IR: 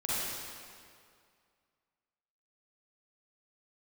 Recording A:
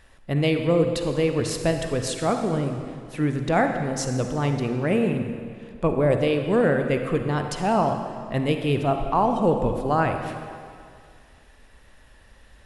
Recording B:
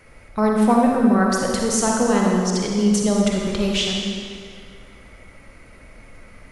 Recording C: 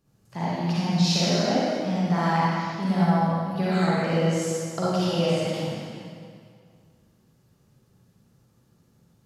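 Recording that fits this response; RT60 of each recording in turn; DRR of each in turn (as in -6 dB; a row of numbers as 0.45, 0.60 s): C; 2.2, 2.2, 2.2 s; 5.5, -1.5, -9.5 dB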